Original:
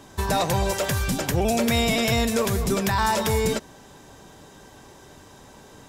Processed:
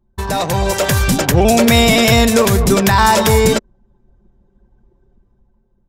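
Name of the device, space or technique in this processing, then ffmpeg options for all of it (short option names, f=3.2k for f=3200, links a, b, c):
voice memo with heavy noise removal: -af "anlmdn=15.8,dynaudnorm=f=130:g=11:m=8dB,volume=3.5dB"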